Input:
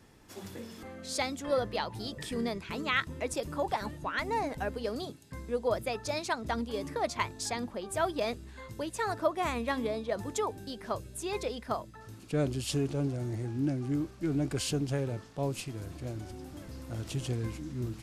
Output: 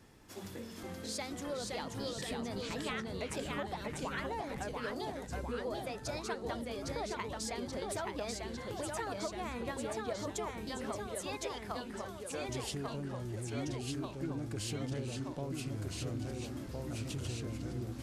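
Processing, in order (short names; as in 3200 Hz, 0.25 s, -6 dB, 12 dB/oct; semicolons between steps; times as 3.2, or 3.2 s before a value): 11.07–12.49 HPF 610 Hz; compressor, threshold -36 dBFS, peak gain reduction 13.5 dB; echoes that change speed 0.448 s, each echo -1 st, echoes 3; gain -1.5 dB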